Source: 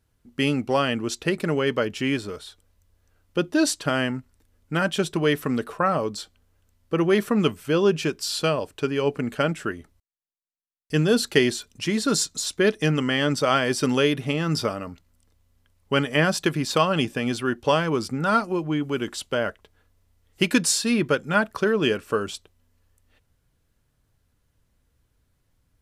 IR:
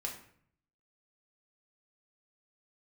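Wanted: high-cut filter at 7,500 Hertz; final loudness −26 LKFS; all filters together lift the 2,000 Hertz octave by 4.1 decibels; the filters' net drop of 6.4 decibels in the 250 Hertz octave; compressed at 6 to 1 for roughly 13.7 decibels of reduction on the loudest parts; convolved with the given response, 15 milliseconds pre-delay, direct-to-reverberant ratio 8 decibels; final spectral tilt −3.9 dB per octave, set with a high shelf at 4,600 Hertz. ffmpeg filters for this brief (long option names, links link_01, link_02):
-filter_complex "[0:a]lowpass=7500,equalizer=frequency=250:width_type=o:gain=-9,equalizer=frequency=2000:width_type=o:gain=6.5,highshelf=frequency=4600:gain=-5,acompressor=threshold=-29dB:ratio=6,asplit=2[link_01][link_02];[1:a]atrim=start_sample=2205,adelay=15[link_03];[link_02][link_03]afir=irnorm=-1:irlink=0,volume=-8.5dB[link_04];[link_01][link_04]amix=inputs=2:normalize=0,volume=7dB"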